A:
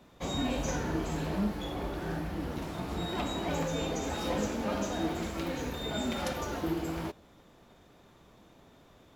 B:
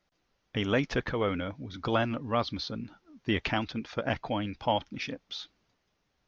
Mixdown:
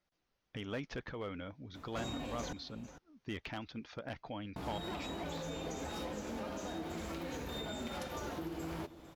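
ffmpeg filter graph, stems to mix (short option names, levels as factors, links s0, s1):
-filter_complex "[0:a]acompressor=threshold=0.0178:ratio=6,bandreject=f=50:t=h:w=6,bandreject=f=100:t=h:w=6,bandreject=f=150:t=h:w=6,bandreject=f=200:t=h:w=6,bandreject=f=250:t=h:w=6,adelay=1750,volume=1.19,asplit=3[s0][s1][s2];[s0]atrim=end=2.53,asetpts=PTS-STARTPTS,afade=t=out:st=2.526:d=0.004:c=hsin[s3];[s1]atrim=start=2.53:end=4.56,asetpts=PTS-STARTPTS,volume=0[s4];[s2]atrim=start=4.56,asetpts=PTS-STARTPTS,afade=t=in:d=0.004:c=hsin[s5];[s3][s4][s5]concat=n=3:v=0:a=1,asplit=2[s6][s7];[s7]volume=0.126[s8];[1:a]volume=0.398[s9];[s8]aecho=0:1:453:1[s10];[s6][s9][s10]amix=inputs=3:normalize=0,asoftclip=type=hard:threshold=0.0447,alimiter=level_in=2.51:limit=0.0631:level=0:latency=1:release=332,volume=0.398"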